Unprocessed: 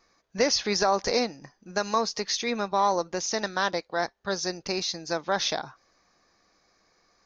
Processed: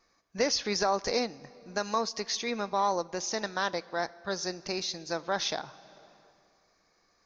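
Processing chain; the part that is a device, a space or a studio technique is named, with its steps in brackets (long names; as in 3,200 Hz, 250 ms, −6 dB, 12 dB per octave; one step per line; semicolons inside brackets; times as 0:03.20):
compressed reverb return (on a send at −9.5 dB: convolution reverb RT60 2.0 s, pre-delay 23 ms + downward compressor 6 to 1, threshold −36 dBFS, peak gain reduction 15.5 dB)
on the sum: level −4 dB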